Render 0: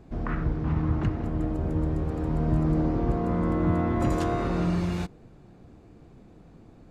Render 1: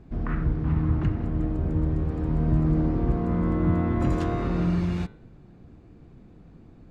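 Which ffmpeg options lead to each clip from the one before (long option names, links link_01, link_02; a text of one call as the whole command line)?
ffmpeg -i in.wav -af "lowpass=frequency=2400:poles=1,equalizer=frequency=680:width_type=o:width=2:gain=-6,bandreject=frequency=107.8:width_type=h:width=4,bandreject=frequency=215.6:width_type=h:width=4,bandreject=frequency=323.4:width_type=h:width=4,bandreject=frequency=431.2:width_type=h:width=4,bandreject=frequency=539:width_type=h:width=4,bandreject=frequency=646.8:width_type=h:width=4,bandreject=frequency=754.6:width_type=h:width=4,bandreject=frequency=862.4:width_type=h:width=4,bandreject=frequency=970.2:width_type=h:width=4,bandreject=frequency=1078:width_type=h:width=4,bandreject=frequency=1185.8:width_type=h:width=4,bandreject=frequency=1293.6:width_type=h:width=4,bandreject=frequency=1401.4:width_type=h:width=4,bandreject=frequency=1509.2:width_type=h:width=4,bandreject=frequency=1617:width_type=h:width=4,bandreject=frequency=1724.8:width_type=h:width=4,bandreject=frequency=1832.6:width_type=h:width=4,bandreject=frequency=1940.4:width_type=h:width=4,bandreject=frequency=2048.2:width_type=h:width=4,bandreject=frequency=2156:width_type=h:width=4,bandreject=frequency=2263.8:width_type=h:width=4,bandreject=frequency=2371.6:width_type=h:width=4,bandreject=frequency=2479.4:width_type=h:width=4,bandreject=frequency=2587.2:width_type=h:width=4,bandreject=frequency=2695:width_type=h:width=4,bandreject=frequency=2802.8:width_type=h:width=4,bandreject=frequency=2910.6:width_type=h:width=4,bandreject=frequency=3018.4:width_type=h:width=4,bandreject=frequency=3126.2:width_type=h:width=4,bandreject=frequency=3234:width_type=h:width=4,bandreject=frequency=3341.8:width_type=h:width=4,bandreject=frequency=3449.6:width_type=h:width=4,bandreject=frequency=3557.4:width_type=h:width=4,bandreject=frequency=3665.2:width_type=h:width=4,bandreject=frequency=3773:width_type=h:width=4,bandreject=frequency=3880.8:width_type=h:width=4,bandreject=frequency=3988.6:width_type=h:width=4,bandreject=frequency=4096.4:width_type=h:width=4,volume=3dB" out.wav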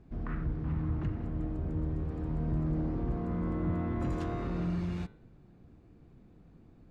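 ffmpeg -i in.wav -af "asoftclip=type=tanh:threshold=-15.5dB,volume=-7.5dB" out.wav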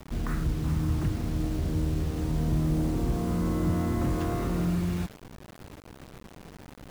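ffmpeg -i in.wav -filter_complex "[0:a]asplit=2[link_01][link_02];[link_02]acompressor=threshold=-42dB:ratio=5,volume=-1.5dB[link_03];[link_01][link_03]amix=inputs=2:normalize=0,acrusher=bits=7:mix=0:aa=0.000001,volume=3.5dB" out.wav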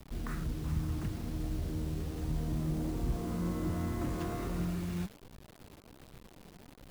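ffmpeg -i in.wav -filter_complex "[0:a]acrossover=split=1300[link_01][link_02];[link_01]flanger=delay=0.3:depth=5.7:regen=66:speed=1.3:shape=triangular[link_03];[link_02]aeval=exprs='sgn(val(0))*max(abs(val(0))-0.00141,0)':channel_layout=same[link_04];[link_03][link_04]amix=inputs=2:normalize=0,volume=-3dB" out.wav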